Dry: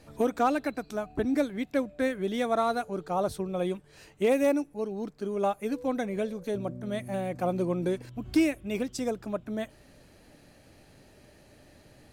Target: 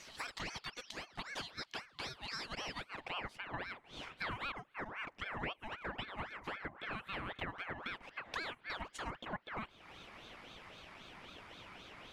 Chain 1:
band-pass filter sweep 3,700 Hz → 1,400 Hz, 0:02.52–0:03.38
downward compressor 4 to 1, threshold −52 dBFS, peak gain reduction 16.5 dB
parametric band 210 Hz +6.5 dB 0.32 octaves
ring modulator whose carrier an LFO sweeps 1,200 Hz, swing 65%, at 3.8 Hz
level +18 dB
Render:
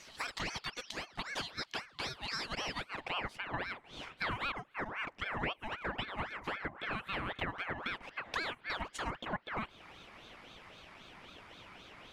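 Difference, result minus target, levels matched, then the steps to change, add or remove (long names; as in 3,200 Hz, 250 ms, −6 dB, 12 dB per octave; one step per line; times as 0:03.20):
downward compressor: peak gain reduction −4.5 dB
change: downward compressor 4 to 1, threshold −58 dBFS, peak gain reduction 21 dB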